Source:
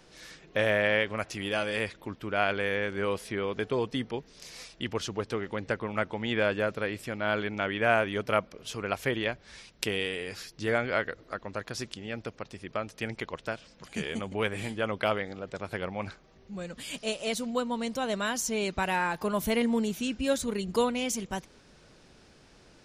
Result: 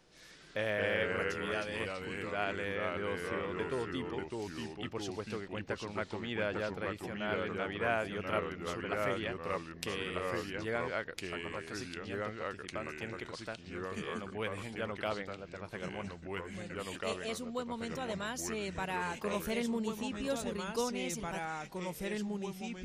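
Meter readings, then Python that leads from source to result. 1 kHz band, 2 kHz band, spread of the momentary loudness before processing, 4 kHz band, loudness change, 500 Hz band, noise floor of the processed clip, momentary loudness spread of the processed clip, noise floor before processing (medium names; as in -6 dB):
-6.0 dB, -6.5 dB, 12 LU, -7.0 dB, -6.5 dB, -6.0 dB, -52 dBFS, 7 LU, -58 dBFS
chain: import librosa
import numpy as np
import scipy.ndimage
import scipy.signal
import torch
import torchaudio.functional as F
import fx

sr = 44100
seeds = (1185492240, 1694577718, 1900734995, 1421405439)

y = fx.echo_pitch(x, sr, ms=152, semitones=-2, count=2, db_per_echo=-3.0)
y = y * librosa.db_to_amplitude(-8.5)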